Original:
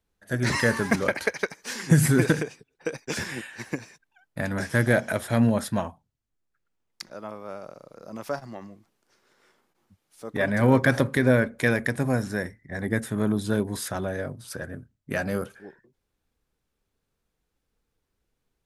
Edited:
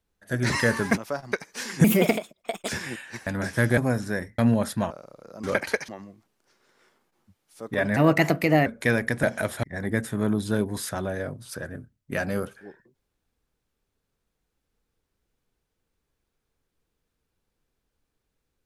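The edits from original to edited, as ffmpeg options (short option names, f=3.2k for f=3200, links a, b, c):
-filter_complex "[0:a]asplit=15[a][b][c][d][e][f][g][h][i][j][k][l][m][n][o];[a]atrim=end=0.972[p];[b]atrim=start=8.158:end=8.512[q];[c]atrim=start=1.418:end=1.944[r];[d]atrim=start=1.94:end=3.14,asetpts=PTS-STARTPTS,asetrate=62622,aresample=44100[s];[e]atrim=start=3.136:end=3.722[t];[f]atrim=start=4.428:end=4.942[u];[g]atrim=start=12.008:end=12.622[v];[h]atrim=start=5.338:end=5.862[w];[i]atrim=start=7.628:end=8.162[x];[j]atrim=start=0.968:end=1.422[y];[k]atrim=start=8.508:end=10.594[z];[l]atrim=start=10.59:end=11.44,asetpts=PTS-STARTPTS,asetrate=53802,aresample=44100,atrim=end_sample=30725,asetpts=PTS-STARTPTS[aa];[m]atrim=start=11.436:end=12.012[ab];[n]atrim=start=4.938:end=5.342[ac];[o]atrim=start=12.618[ad];[p][q]acrossfade=d=0.004:c1=hsin:c2=hsin[ae];[ae][r]acrossfade=d=0.004:c1=hsin:c2=hsin[af];[af][s]acrossfade=d=0.004:c1=hsin:c2=hsin[ag];[ag][t]acrossfade=d=0.004:c1=hsin:c2=hsin[ah];[ah][u]acrossfade=d=0.004:c1=hsin:c2=hsin[ai];[ai][v]acrossfade=d=0.004:c1=hsin:c2=hsin[aj];[aj][w]acrossfade=d=0.004:c1=hsin:c2=hsin[ak];[ak][x]acrossfade=d=0.004:c1=hsin:c2=hsin[al];[al][y]acrossfade=d=0.004:c1=hsin:c2=hsin[am];[am][z]acrossfade=d=0.004:c1=hsin:c2=hsin[an];[an][aa]acrossfade=d=0.004:c1=hsin:c2=hsin[ao];[ao][ab]acrossfade=d=0.004:c1=hsin:c2=hsin[ap];[ap][ac]acrossfade=d=0.004:c1=hsin:c2=hsin[aq];[aq][ad]acrossfade=d=0.004:c1=hsin:c2=hsin"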